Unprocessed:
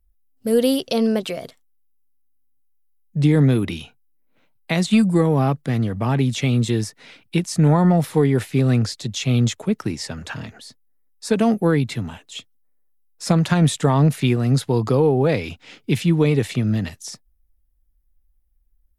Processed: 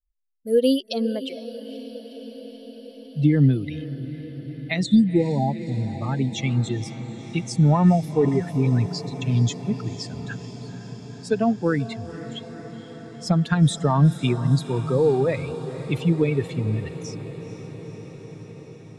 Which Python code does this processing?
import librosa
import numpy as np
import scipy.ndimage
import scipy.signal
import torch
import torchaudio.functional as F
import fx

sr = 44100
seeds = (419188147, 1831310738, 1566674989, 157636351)

y = fx.bin_expand(x, sr, power=2.0)
y = scipy.signal.sosfilt(scipy.signal.butter(2, 7800.0, 'lowpass', fs=sr, output='sos'), y)
y = fx.spec_repair(y, sr, seeds[0], start_s=4.89, length_s=1.0, low_hz=1000.0, high_hz=3300.0, source='both')
y = fx.dispersion(y, sr, late='highs', ms=71.0, hz=530.0, at=(8.25, 9.22))
y = fx.echo_diffused(y, sr, ms=483, feedback_pct=76, wet_db=-14.0)
y = y * 10.0 ** (1.5 / 20.0)